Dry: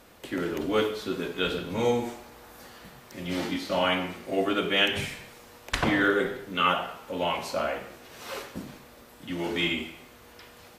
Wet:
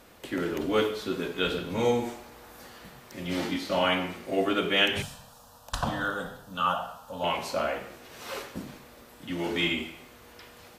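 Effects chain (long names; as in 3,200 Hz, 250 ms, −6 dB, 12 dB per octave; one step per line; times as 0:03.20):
0:05.02–0:07.24: phaser with its sweep stopped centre 890 Hz, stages 4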